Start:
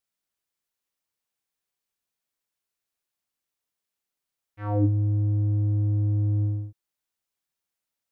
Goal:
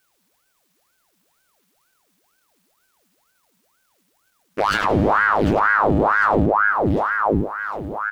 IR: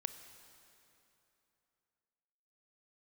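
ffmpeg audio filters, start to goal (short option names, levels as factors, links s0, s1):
-filter_complex "[0:a]lowshelf=f=560:t=q:w=3:g=-6,aeval=exprs='0.0211*(abs(mod(val(0)/0.0211+3,4)-2)-1)':c=same,asubboost=boost=9:cutoff=100,aeval=exprs='max(val(0),0)':c=same,aecho=1:1:751|1502|2253|3004|3755:0.282|0.13|0.0596|0.0274|0.0126,asplit=2[s0][s1];[1:a]atrim=start_sample=2205[s2];[s1][s2]afir=irnorm=-1:irlink=0,volume=2.11[s3];[s0][s3]amix=inputs=2:normalize=0,alimiter=level_in=15:limit=0.891:release=50:level=0:latency=1,aeval=exprs='val(0)*sin(2*PI*860*n/s+860*0.8/2.1*sin(2*PI*2.1*n/s))':c=same,volume=0.473"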